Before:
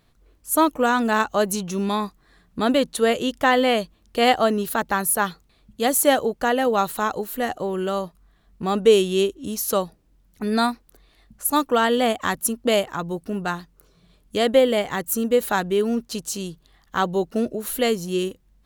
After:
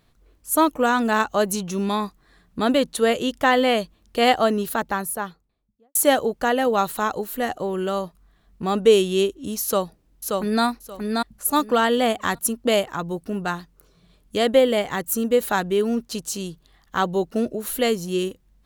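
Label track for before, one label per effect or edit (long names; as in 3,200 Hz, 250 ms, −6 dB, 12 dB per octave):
4.570000	5.950000	fade out and dull
9.640000	10.640000	delay throw 580 ms, feedback 20%, level −3 dB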